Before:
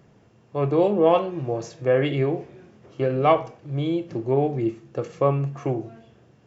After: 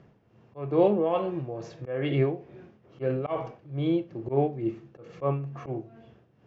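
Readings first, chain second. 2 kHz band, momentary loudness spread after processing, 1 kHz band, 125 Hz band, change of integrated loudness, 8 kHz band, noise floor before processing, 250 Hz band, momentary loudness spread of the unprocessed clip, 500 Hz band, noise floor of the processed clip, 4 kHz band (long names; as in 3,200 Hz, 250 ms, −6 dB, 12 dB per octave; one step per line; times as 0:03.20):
−8.0 dB, 14 LU, −8.5 dB, −5.0 dB, −5.5 dB, can't be measured, −56 dBFS, −4.0 dB, 12 LU, −6.0 dB, −62 dBFS, −7.5 dB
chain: volume swells 116 ms
high-frequency loss of the air 160 metres
amplitude tremolo 2.3 Hz, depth 68%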